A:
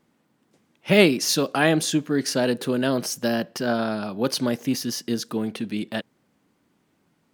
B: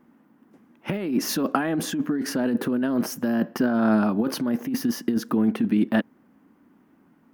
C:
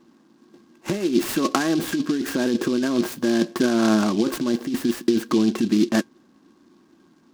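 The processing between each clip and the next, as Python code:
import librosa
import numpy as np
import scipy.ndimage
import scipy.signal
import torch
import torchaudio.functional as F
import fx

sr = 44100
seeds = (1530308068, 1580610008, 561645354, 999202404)

y1 = fx.graphic_eq_10(x, sr, hz=(125, 250, 500, 1000, 2000, 4000, 8000), db=(-6, 10, -3, 3, 6, -11, -11))
y1 = fx.over_compress(y1, sr, threshold_db=-22.0, ratio=-1.0)
y1 = fx.peak_eq(y1, sr, hz=2200.0, db=-6.5, octaves=0.65)
y2 = fx.small_body(y1, sr, hz=(350.0, 1100.0, 1600.0, 2700.0), ring_ms=85, db=12)
y2 = fx.noise_mod_delay(y2, sr, seeds[0], noise_hz=3900.0, depth_ms=0.055)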